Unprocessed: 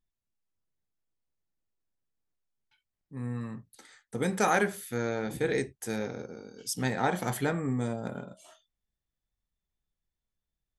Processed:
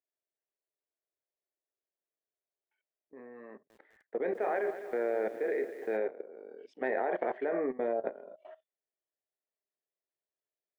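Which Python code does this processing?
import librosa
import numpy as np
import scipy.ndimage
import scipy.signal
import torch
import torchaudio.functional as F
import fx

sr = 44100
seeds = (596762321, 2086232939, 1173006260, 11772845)

y = fx.cabinet(x, sr, low_hz=340.0, low_slope=24, high_hz=2000.0, hz=(400.0, 630.0, 890.0, 1300.0, 1900.0), db=(6, 9, -4, -9, 3))
y = fx.level_steps(y, sr, step_db=18)
y = fx.echo_crushed(y, sr, ms=205, feedback_pct=55, bits=10, wet_db=-12.0, at=(3.49, 5.97))
y = F.gain(torch.from_numpy(y), 5.0).numpy()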